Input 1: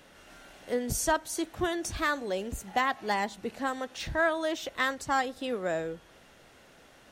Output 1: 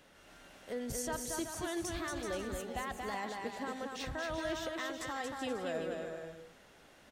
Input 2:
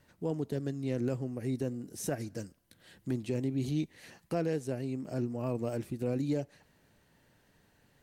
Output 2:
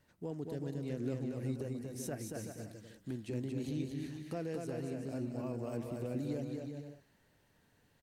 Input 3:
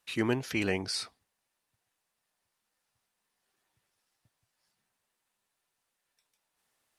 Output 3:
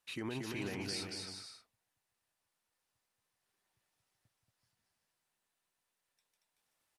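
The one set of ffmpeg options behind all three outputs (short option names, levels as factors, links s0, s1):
-filter_complex "[0:a]alimiter=level_in=1.06:limit=0.0631:level=0:latency=1:release=48,volume=0.944,asplit=2[s0][s1];[s1]aecho=0:1:230|379.5|476.7|539.8|580.9:0.631|0.398|0.251|0.158|0.1[s2];[s0][s2]amix=inputs=2:normalize=0,volume=0.501"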